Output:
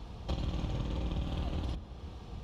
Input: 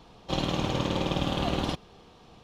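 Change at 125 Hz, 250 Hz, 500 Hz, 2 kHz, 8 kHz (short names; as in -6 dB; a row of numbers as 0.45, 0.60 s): -3.5, -10.0, -13.0, -14.5, -14.5 dB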